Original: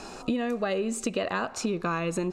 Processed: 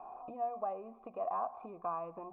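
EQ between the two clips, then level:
formant resonators in series a
mains-hum notches 60/120/180/240 Hz
+4.5 dB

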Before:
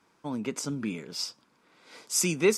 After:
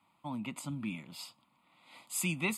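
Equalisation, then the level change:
high-pass filter 60 Hz
phaser with its sweep stopped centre 1,600 Hz, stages 6
−1.5 dB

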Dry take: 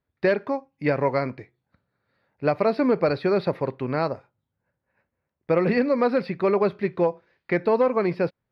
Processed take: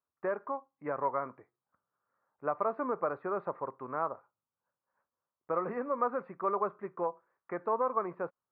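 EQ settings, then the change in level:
transistor ladder low-pass 1,300 Hz, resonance 65%
low-shelf EQ 140 Hz −7 dB
low-shelf EQ 290 Hz −9 dB
0.0 dB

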